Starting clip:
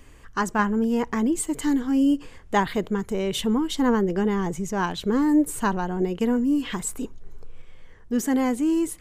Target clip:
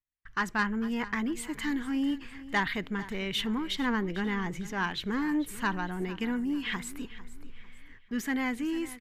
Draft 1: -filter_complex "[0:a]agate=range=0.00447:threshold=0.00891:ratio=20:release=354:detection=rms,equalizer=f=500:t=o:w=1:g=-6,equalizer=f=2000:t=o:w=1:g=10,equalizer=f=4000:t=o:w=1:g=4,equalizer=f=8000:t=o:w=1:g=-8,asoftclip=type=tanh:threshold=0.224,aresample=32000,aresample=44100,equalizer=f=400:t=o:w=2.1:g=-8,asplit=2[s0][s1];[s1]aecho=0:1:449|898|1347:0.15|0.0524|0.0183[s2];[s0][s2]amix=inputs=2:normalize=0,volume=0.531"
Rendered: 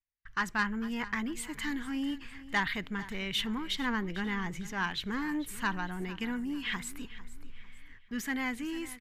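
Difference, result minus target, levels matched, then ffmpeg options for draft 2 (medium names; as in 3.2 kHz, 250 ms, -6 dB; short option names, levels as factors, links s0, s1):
500 Hz band -3.0 dB
-filter_complex "[0:a]agate=range=0.00447:threshold=0.00891:ratio=20:release=354:detection=rms,equalizer=f=500:t=o:w=1:g=-6,equalizer=f=2000:t=o:w=1:g=10,equalizer=f=4000:t=o:w=1:g=4,equalizer=f=8000:t=o:w=1:g=-8,asoftclip=type=tanh:threshold=0.224,aresample=32000,aresample=44100,equalizer=f=400:t=o:w=2.1:g=-2,asplit=2[s0][s1];[s1]aecho=0:1:449|898|1347:0.15|0.0524|0.0183[s2];[s0][s2]amix=inputs=2:normalize=0,volume=0.531"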